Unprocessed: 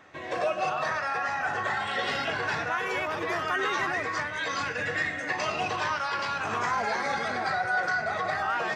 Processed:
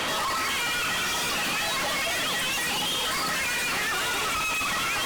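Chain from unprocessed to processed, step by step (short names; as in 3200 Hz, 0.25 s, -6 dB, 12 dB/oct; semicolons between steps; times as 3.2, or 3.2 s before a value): tone controls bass +12 dB, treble +11 dB; overdrive pedal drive 38 dB, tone 1100 Hz, clips at -14 dBFS; hard clip -32 dBFS, distortion -7 dB; speed mistake 45 rpm record played at 78 rpm; gain +5.5 dB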